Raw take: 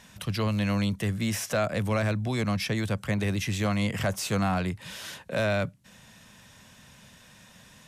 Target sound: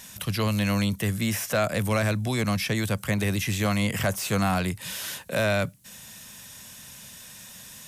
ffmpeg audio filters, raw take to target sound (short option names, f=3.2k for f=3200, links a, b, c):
-filter_complex "[0:a]aemphasis=mode=production:type=75fm,acrossover=split=2900[a][b];[b]acompressor=threshold=-34dB:ratio=4:attack=1:release=60[c];[a][c]amix=inputs=2:normalize=0,volume=2.5dB"